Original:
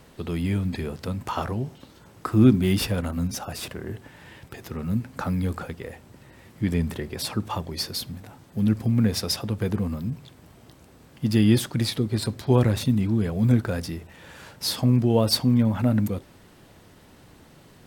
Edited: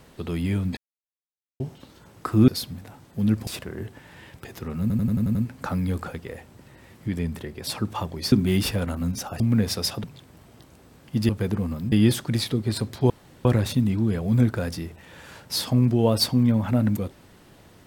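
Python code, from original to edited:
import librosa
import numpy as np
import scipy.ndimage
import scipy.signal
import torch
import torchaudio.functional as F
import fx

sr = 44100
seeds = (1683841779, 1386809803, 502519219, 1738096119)

y = fx.edit(x, sr, fx.silence(start_s=0.77, length_s=0.83),
    fx.swap(start_s=2.48, length_s=1.08, other_s=7.87, other_length_s=0.99),
    fx.stutter(start_s=4.9, slice_s=0.09, count=7),
    fx.clip_gain(start_s=6.63, length_s=0.59, db=-3.5),
    fx.move(start_s=9.5, length_s=0.63, to_s=11.38),
    fx.insert_room_tone(at_s=12.56, length_s=0.35), tone=tone)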